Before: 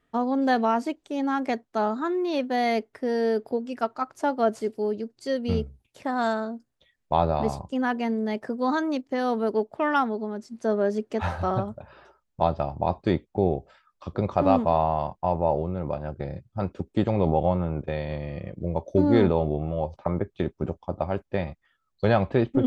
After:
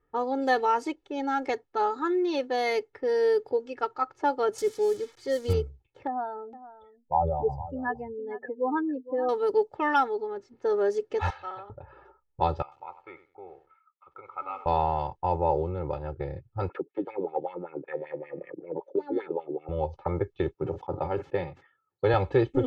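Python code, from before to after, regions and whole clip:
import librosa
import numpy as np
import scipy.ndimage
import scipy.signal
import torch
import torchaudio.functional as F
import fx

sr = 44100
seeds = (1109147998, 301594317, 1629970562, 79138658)

y = fx.chain(x, sr, fx.crossing_spikes(level_db=-30.0),
    fx.low_shelf(hz=110.0, db=6.5),
    fx.notch(hz=2700.0, q=8.8), at=(4.58, 5.53))
y = fx.chain(y, sr, fx.spec_expand(power=2.3),
    fx.echo_single(ms=460, db=-15.5), at=(6.07, 9.29))
y = fx.chain(y, sr, fx.bandpass_q(hz=2900.0, q=1.1),
    fx.sustainer(db_per_s=100.0), at=(11.3, 11.7))
y = fx.chain(y, sr, fx.double_bandpass(hz=1700.0, octaves=0.72),
    fx.echo_crushed(ms=94, feedback_pct=35, bits=9, wet_db=-12), at=(12.62, 14.66))
y = fx.chain(y, sr, fx.highpass(hz=160.0, slope=24),
    fx.wah_lfo(hz=5.2, low_hz=230.0, high_hz=2400.0, q=3.0),
    fx.band_squash(depth_pct=70), at=(16.69, 19.69))
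y = fx.chain(y, sr, fx.highpass(hz=110.0, slope=24),
    fx.high_shelf(hz=4700.0, db=-9.5),
    fx.sustainer(db_per_s=130.0), at=(20.54, 22.14))
y = fx.env_lowpass(y, sr, base_hz=1400.0, full_db=-19.5)
y = fx.peak_eq(y, sr, hz=6400.0, db=3.0, octaves=0.49)
y = y + 0.91 * np.pad(y, (int(2.3 * sr / 1000.0), 0))[:len(y)]
y = F.gain(torch.from_numpy(y), -3.5).numpy()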